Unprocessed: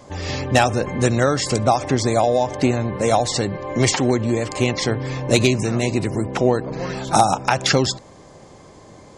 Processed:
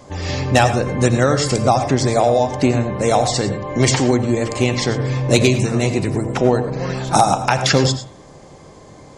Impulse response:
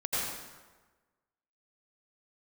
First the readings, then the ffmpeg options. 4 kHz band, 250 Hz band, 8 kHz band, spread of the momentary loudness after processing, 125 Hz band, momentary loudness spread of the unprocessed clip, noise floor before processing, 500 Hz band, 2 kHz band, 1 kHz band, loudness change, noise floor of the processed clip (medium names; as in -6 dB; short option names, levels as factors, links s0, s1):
+1.5 dB, +2.5 dB, +2.0 dB, 6 LU, +4.0 dB, 6 LU, -45 dBFS, +2.5 dB, +1.5 dB, +2.0 dB, +2.5 dB, -42 dBFS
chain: -filter_complex "[0:a]bandreject=f=112.1:t=h:w=4,bandreject=f=224.2:t=h:w=4,bandreject=f=336.3:t=h:w=4,bandreject=f=448.4:t=h:w=4,bandreject=f=560.5:t=h:w=4,bandreject=f=672.6:t=h:w=4,bandreject=f=784.7:t=h:w=4,bandreject=f=896.8:t=h:w=4,bandreject=f=1008.9:t=h:w=4,bandreject=f=1121:t=h:w=4,bandreject=f=1233.1:t=h:w=4,bandreject=f=1345.2:t=h:w=4,bandreject=f=1457.3:t=h:w=4,bandreject=f=1569.4:t=h:w=4,bandreject=f=1681.5:t=h:w=4,bandreject=f=1793.6:t=h:w=4,bandreject=f=1905.7:t=h:w=4,bandreject=f=2017.8:t=h:w=4,bandreject=f=2129.9:t=h:w=4,bandreject=f=2242:t=h:w=4,bandreject=f=2354.1:t=h:w=4,bandreject=f=2466.2:t=h:w=4,bandreject=f=2578.3:t=h:w=4,bandreject=f=2690.4:t=h:w=4,bandreject=f=2802.5:t=h:w=4,bandreject=f=2914.6:t=h:w=4,bandreject=f=3026.7:t=h:w=4,bandreject=f=3138.8:t=h:w=4,bandreject=f=3250.9:t=h:w=4,bandreject=f=3363:t=h:w=4,bandreject=f=3475.1:t=h:w=4,bandreject=f=3587.2:t=h:w=4,bandreject=f=3699.3:t=h:w=4,bandreject=f=3811.4:t=h:w=4,bandreject=f=3923.5:t=h:w=4,asplit=2[s0][s1];[1:a]atrim=start_sample=2205,afade=t=out:st=0.17:d=0.01,atrim=end_sample=7938,lowshelf=f=370:g=7[s2];[s1][s2]afir=irnorm=-1:irlink=0,volume=0.237[s3];[s0][s3]amix=inputs=2:normalize=0"